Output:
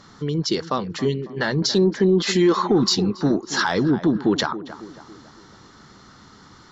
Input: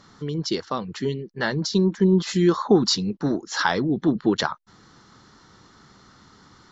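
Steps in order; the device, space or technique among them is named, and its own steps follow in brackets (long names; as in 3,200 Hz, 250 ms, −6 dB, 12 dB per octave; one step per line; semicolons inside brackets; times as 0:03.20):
0:01.62–0:02.67: graphic EQ with 10 bands 125 Hz −11 dB, 250 Hz +4 dB, 500 Hz +5 dB, 2,000 Hz +5 dB, 4,000 Hz +3 dB
tape delay 276 ms, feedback 54%, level −15 dB, low-pass 1,500 Hz
soft clipper into limiter (soft clipping −6.5 dBFS, distortion −23 dB; brickwall limiter −14 dBFS, peak gain reduction 6 dB)
level +4 dB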